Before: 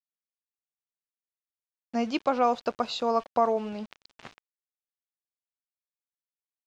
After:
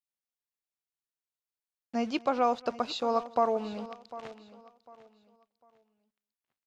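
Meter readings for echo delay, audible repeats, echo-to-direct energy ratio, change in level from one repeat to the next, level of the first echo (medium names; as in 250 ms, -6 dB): 230 ms, 3, -15.5 dB, no regular repeats, -24.0 dB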